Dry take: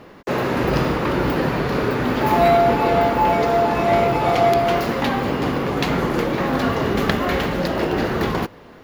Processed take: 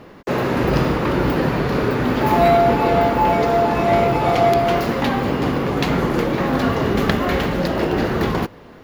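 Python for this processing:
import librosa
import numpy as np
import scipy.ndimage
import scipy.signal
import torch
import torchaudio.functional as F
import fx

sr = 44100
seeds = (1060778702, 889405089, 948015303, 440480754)

y = fx.low_shelf(x, sr, hz=360.0, db=3.0)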